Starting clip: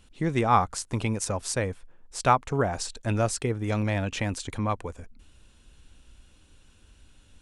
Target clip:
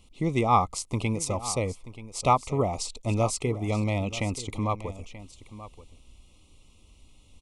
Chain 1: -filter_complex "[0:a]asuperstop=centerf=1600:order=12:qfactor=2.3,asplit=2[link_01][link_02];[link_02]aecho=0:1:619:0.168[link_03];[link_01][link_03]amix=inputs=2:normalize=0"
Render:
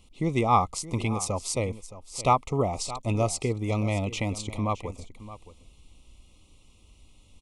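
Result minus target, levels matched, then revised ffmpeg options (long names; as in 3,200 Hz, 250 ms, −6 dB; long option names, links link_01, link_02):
echo 313 ms early
-filter_complex "[0:a]asuperstop=centerf=1600:order=12:qfactor=2.3,asplit=2[link_01][link_02];[link_02]aecho=0:1:932:0.168[link_03];[link_01][link_03]amix=inputs=2:normalize=0"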